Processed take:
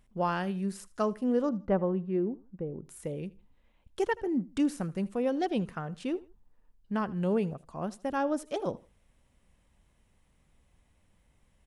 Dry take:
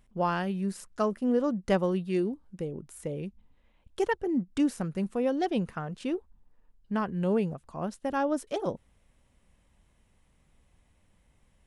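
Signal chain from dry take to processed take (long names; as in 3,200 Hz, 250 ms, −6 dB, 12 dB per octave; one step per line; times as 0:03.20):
0:01.49–0:02.85: low-pass filter 1,200 Hz 12 dB per octave
repeating echo 79 ms, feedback 30%, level −21 dB
level −1.5 dB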